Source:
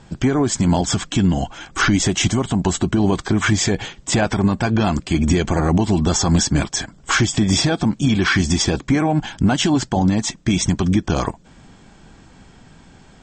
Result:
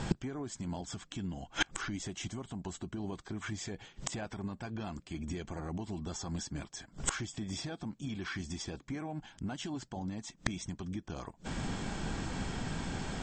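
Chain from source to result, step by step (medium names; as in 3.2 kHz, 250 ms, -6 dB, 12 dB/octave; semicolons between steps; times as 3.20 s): inverted gate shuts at -24 dBFS, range -31 dB; trim +8.5 dB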